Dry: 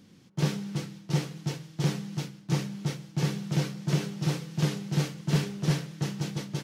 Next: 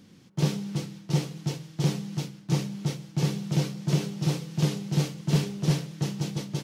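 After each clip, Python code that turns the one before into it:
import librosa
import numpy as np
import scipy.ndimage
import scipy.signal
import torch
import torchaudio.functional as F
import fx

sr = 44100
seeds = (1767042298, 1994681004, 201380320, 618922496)

y = fx.dynamic_eq(x, sr, hz=1600.0, q=1.4, threshold_db=-53.0, ratio=4.0, max_db=-6)
y = y * librosa.db_to_amplitude(2.0)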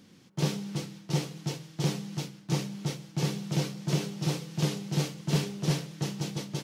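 y = fx.low_shelf(x, sr, hz=210.0, db=-6.0)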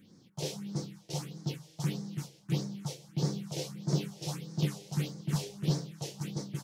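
y = fx.phaser_stages(x, sr, stages=4, low_hz=200.0, high_hz=2800.0, hz=1.6, feedback_pct=25)
y = y * librosa.db_to_amplitude(-2.5)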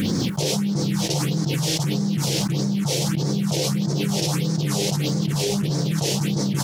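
y = fx.env_flatten(x, sr, amount_pct=100)
y = y * librosa.db_to_amplitude(1.5)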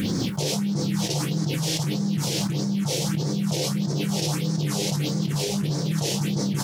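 y = fx.doubler(x, sr, ms=26.0, db=-10.0)
y = y * librosa.db_to_amplitude(-3.0)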